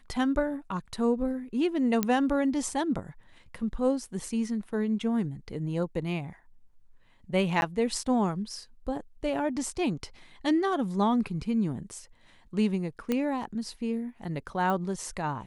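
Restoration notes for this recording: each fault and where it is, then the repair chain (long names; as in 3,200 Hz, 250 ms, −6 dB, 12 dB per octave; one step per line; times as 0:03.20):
0:02.03: click −11 dBFS
0:07.61–0:07.62: drop-out 11 ms
0:13.12: click −15 dBFS
0:14.70: click −19 dBFS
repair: click removal
repair the gap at 0:07.61, 11 ms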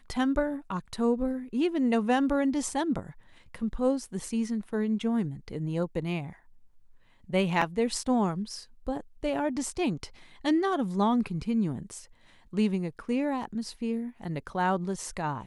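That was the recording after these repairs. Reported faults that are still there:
none of them is left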